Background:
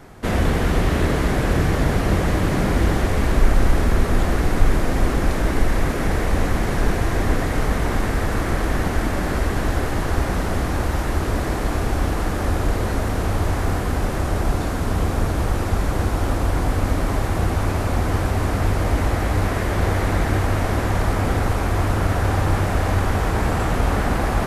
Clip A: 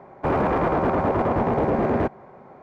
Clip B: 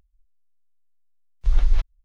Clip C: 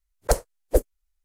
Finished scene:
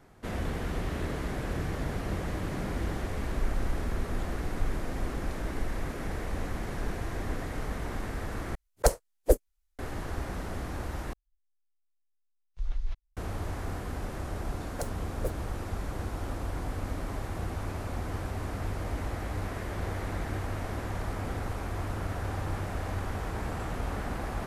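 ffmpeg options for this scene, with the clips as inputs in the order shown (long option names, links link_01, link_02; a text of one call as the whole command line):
ffmpeg -i bed.wav -i cue0.wav -i cue1.wav -i cue2.wav -filter_complex "[3:a]asplit=2[link_01][link_02];[0:a]volume=-14dB[link_03];[link_02]acrusher=bits=5:mix=0:aa=0.5[link_04];[link_03]asplit=3[link_05][link_06][link_07];[link_05]atrim=end=8.554[link_08];[link_01]atrim=end=1.24,asetpts=PTS-STARTPTS,volume=-2dB[link_09];[link_06]atrim=start=9.786:end=11.134[link_10];[2:a]atrim=end=2.04,asetpts=PTS-STARTPTS,volume=-14dB[link_11];[link_07]atrim=start=13.166[link_12];[link_04]atrim=end=1.24,asetpts=PTS-STARTPTS,volume=-14.5dB,afade=type=in:duration=0.004:curve=hsin,afade=type=out:start_time=1.236:duration=0.004:curve=hsin,adelay=14500[link_13];[link_08][link_09]acrossfade=duration=0.004:curve1=hsin:curve2=hsin[link_14];[link_14][link_10]acrossfade=duration=0.004:curve1=hsin:curve2=hsin[link_15];[link_15][link_11]acrossfade=duration=0.004:curve1=hsin:curve2=hsin[link_16];[link_16][link_12]acrossfade=duration=0.004:curve1=hsin:curve2=hsin[link_17];[link_17][link_13]amix=inputs=2:normalize=0" out.wav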